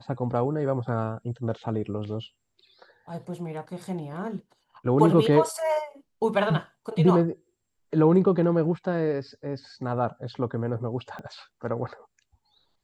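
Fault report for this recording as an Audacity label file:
11.190000	11.190000	click −27 dBFS

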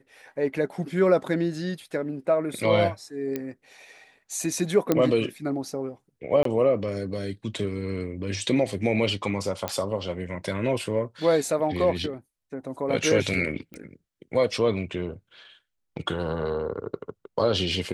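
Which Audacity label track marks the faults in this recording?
3.360000	3.360000	click −16 dBFS
4.920000	4.920000	click −8 dBFS
6.430000	6.450000	drop-out 23 ms
9.680000	9.680000	click −11 dBFS
13.740000	13.740000	click −26 dBFS

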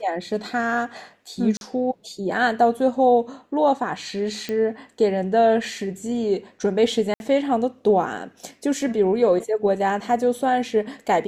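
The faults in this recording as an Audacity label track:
1.570000	1.610000	drop-out 41 ms
4.490000	4.490000	click −15 dBFS
7.140000	7.200000	drop-out 61 ms

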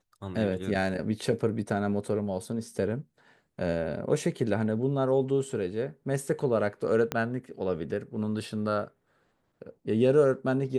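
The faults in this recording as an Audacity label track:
7.120000	7.120000	click −13 dBFS

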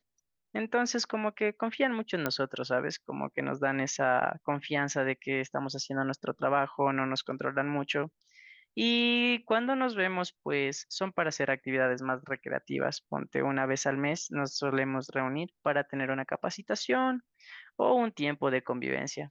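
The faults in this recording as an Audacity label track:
2.260000	2.260000	click −14 dBFS

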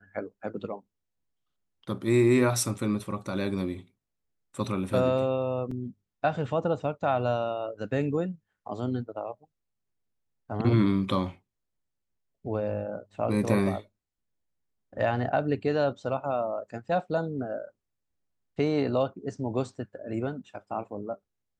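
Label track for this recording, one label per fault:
5.710000	5.710000	drop-out 3.9 ms

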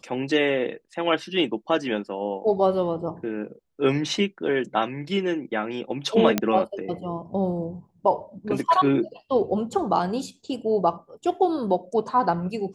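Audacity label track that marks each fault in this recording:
6.380000	6.380000	click −6 dBFS

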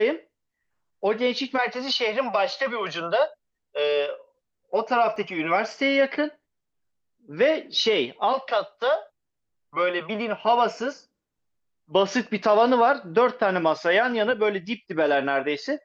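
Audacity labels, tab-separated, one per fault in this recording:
5.160000	5.160000	drop-out 3 ms

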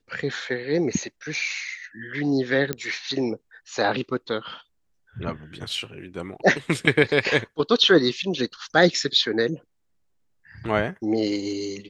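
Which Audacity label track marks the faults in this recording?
2.730000	2.730000	click −10 dBFS

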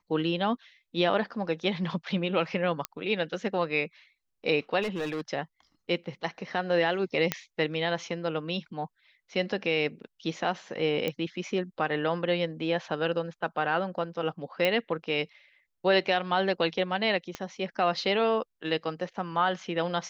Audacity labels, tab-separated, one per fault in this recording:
2.850000	2.850000	click −13 dBFS
4.820000	5.210000	clipping −27.5 dBFS
7.320000	7.320000	click −9 dBFS
11.080000	11.080000	click −16 dBFS
14.650000	14.650000	click −13 dBFS
17.350000	17.350000	click −19 dBFS

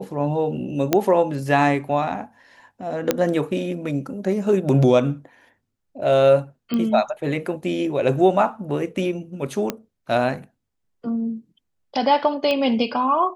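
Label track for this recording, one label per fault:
0.930000	0.930000	click −3 dBFS
3.110000	3.110000	click −3 dBFS
6.740000	6.740000	click −13 dBFS
9.700000	9.700000	click −9 dBFS
12.510000	12.510000	click −11 dBFS

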